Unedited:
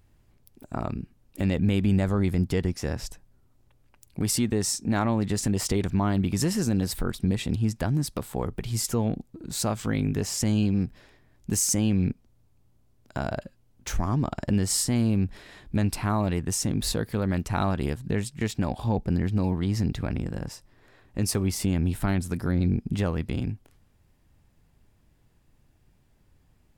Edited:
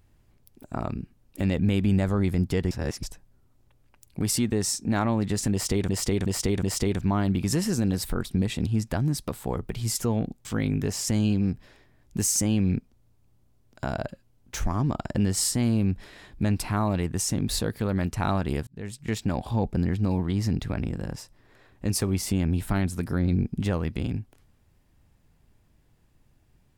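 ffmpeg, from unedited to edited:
-filter_complex "[0:a]asplit=8[a][b][c][d][e][f][g][h];[a]atrim=end=2.712[i];[b]atrim=start=2.708:end=3.032,asetpts=PTS-STARTPTS,areverse[j];[c]atrim=start=3.028:end=5.892[k];[d]atrim=start=5.518:end=5.892[l];[e]atrim=start=5.518:end=5.892[m];[f]atrim=start=5.518:end=9.342[n];[g]atrim=start=9.778:end=18,asetpts=PTS-STARTPTS,afade=t=out:st=8.218:d=0.004:c=hsin[o];[h]atrim=start=18,asetpts=PTS-STARTPTS,afade=t=in:d=0.48[p];[i][j]acrossfade=d=0.004:c1=hsin:c2=hsin[q];[q][k]acrossfade=d=0.004:c1=hsin:c2=hsin[r];[r][l]acrossfade=d=0.004:c1=hsin:c2=hsin[s];[s][m]acrossfade=d=0.004:c1=hsin:c2=hsin[t];[t][n]acrossfade=d=0.004:c1=hsin:c2=hsin[u];[o][p]concat=n=2:v=0:a=1[v];[u][v]acrossfade=d=0.004:c1=hsin:c2=hsin"

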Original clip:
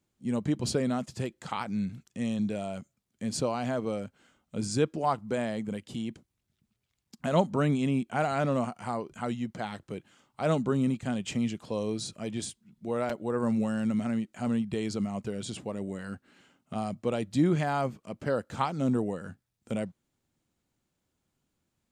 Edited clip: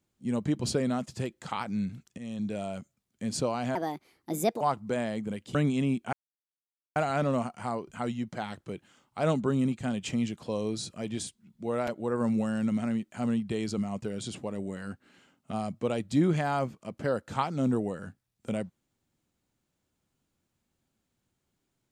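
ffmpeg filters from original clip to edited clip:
-filter_complex "[0:a]asplit=6[a][b][c][d][e][f];[a]atrim=end=2.18,asetpts=PTS-STARTPTS,afade=t=out:st=2.176:d=0.004:c=hsin:silence=0.237137[g];[b]atrim=start=2.18:end=3.754,asetpts=PTS-STARTPTS,afade=t=in:d=0.43:silence=0.237137[h];[c]atrim=start=3.75:end=5.02,asetpts=PTS-STARTPTS,asetrate=65268,aresample=44100[i];[d]atrim=start=5.016:end=5.962[j];[e]atrim=start=7.598:end=8.18,asetpts=PTS-STARTPTS,afade=t=out:st=0.578:d=0.004:c=hsin,apad=pad_dur=0.83[k];[f]atrim=start=8.18,asetpts=PTS-STARTPTS,afade=t=in:d=0.004:c=hsin[l];[g][h]concat=n=2:v=0:a=1[m];[m][i]acrossfade=d=0.004:c1=hsin:c2=hsin[n];[n][j]acrossfade=d=0.004:c1=hsin:c2=hsin[o];[k][l]concat=n=2:v=0:a=1[p];[o][p]acrossfade=d=0.004:c1=hsin:c2=hsin"

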